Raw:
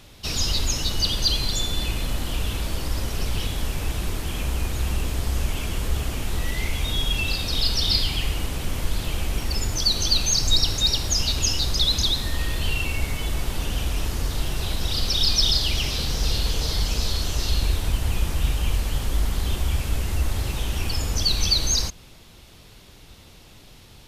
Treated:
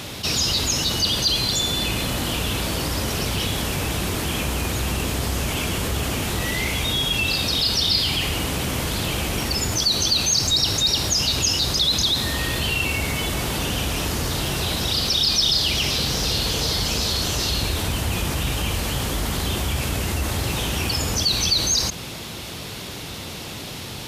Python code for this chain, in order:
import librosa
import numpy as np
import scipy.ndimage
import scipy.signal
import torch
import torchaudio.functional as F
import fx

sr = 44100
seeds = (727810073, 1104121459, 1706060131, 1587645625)

y = scipy.signal.sosfilt(scipy.signal.butter(2, 100.0, 'highpass', fs=sr, output='sos'), x)
y = fx.env_flatten(y, sr, amount_pct=50)